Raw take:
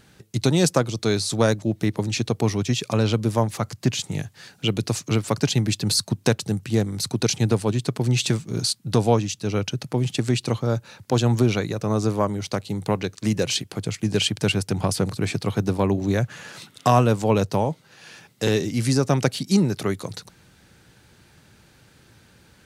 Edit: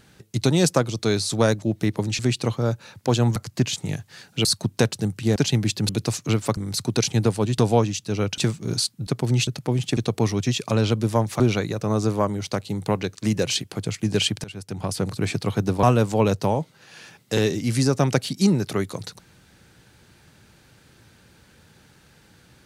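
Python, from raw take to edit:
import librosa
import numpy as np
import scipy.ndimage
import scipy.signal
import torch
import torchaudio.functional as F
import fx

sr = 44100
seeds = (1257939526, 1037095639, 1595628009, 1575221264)

y = fx.edit(x, sr, fx.swap(start_s=2.19, length_s=1.43, other_s=10.23, other_length_s=1.17),
    fx.swap(start_s=4.71, length_s=0.68, other_s=5.92, other_length_s=0.91),
    fx.swap(start_s=7.84, length_s=0.4, other_s=8.93, other_length_s=0.8),
    fx.fade_in_from(start_s=14.44, length_s=0.77, floor_db=-22.5),
    fx.cut(start_s=15.83, length_s=1.1), tone=tone)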